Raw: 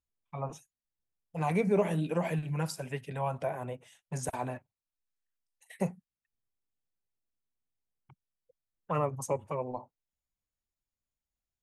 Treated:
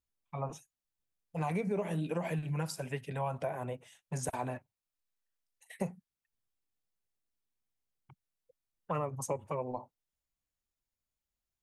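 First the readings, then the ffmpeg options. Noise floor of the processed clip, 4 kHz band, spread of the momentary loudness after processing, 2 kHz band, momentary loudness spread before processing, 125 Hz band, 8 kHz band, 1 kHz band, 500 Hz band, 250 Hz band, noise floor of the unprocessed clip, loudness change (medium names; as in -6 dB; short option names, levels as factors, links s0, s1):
under -85 dBFS, -2.0 dB, 10 LU, -3.0 dB, 15 LU, -2.5 dB, -0.5 dB, -3.0 dB, -4.5 dB, -4.0 dB, under -85 dBFS, -3.5 dB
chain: -af "acompressor=threshold=0.0316:ratio=6"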